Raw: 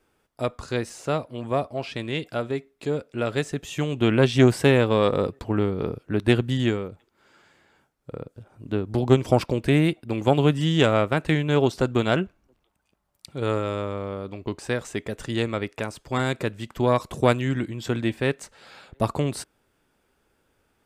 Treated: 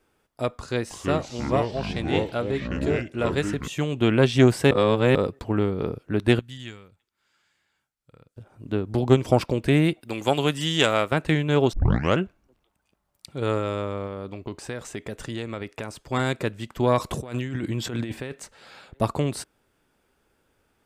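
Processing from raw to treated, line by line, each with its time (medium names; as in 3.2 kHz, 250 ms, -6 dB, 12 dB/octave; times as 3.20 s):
0.61–3.68 s: ever faster or slower copies 297 ms, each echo -5 st, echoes 3
4.71–5.15 s: reverse
6.39–8.37 s: amplifier tone stack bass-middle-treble 5-5-5
10.01–11.12 s: tilt EQ +2.5 dB/octave
11.73 s: tape start 0.44 s
14.06–15.99 s: compression 4:1, threshold -28 dBFS
16.97–18.32 s: compressor with a negative ratio -30 dBFS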